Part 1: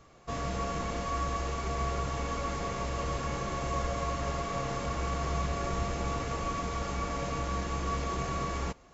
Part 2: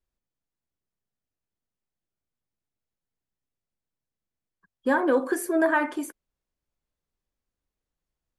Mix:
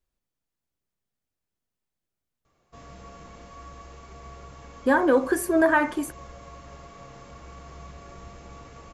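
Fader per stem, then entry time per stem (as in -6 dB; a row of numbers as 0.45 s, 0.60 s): -12.0 dB, +2.5 dB; 2.45 s, 0.00 s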